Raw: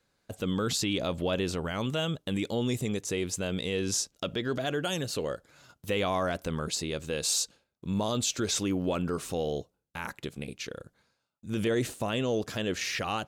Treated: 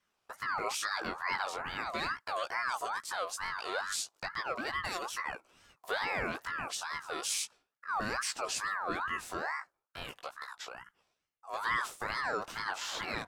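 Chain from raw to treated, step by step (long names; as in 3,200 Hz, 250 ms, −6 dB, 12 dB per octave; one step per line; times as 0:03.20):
chorus effect 0.36 Hz, delay 15 ms, depth 5.1 ms
0:01.81–0:02.69: dynamic equaliser 1,400 Hz, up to +4 dB, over −47 dBFS, Q 0.76
ring modulator whose carrier an LFO sweeps 1,200 Hz, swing 30%, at 2.3 Hz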